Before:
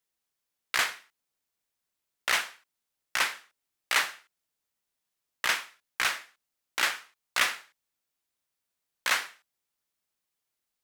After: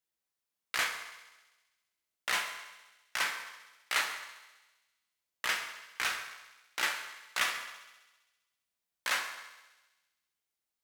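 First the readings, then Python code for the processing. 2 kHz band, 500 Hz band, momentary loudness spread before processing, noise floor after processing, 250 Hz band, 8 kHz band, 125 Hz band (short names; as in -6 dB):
-4.5 dB, -4.5 dB, 14 LU, under -85 dBFS, -4.0 dB, -4.5 dB, n/a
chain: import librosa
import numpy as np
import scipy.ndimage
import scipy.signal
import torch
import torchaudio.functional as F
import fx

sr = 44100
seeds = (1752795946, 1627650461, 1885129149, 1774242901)

y = fx.echo_thinned(x, sr, ms=66, feedback_pct=74, hz=820.0, wet_db=-15)
y = fx.rev_fdn(y, sr, rt60_s=1.1, lf_ratio=0.9, hf_ratio=0.75, size_ms=93.0, drr_db=3.5)
y = F.gain(torch.from_numpy(y), -6.0).numpy()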